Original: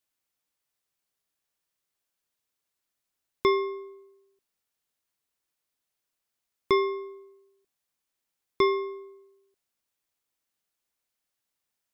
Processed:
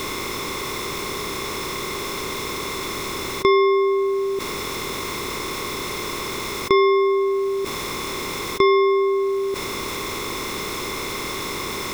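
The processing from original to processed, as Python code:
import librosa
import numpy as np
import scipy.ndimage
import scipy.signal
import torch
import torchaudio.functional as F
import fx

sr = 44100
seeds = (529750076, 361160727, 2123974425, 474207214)

y = fx.bin_compress(x, sr, power=0.6)
y = fx.env_flatten(y, sr, amount_pct=70)
y = F.gain(torch.from_numpy(y), 4.5).numpy()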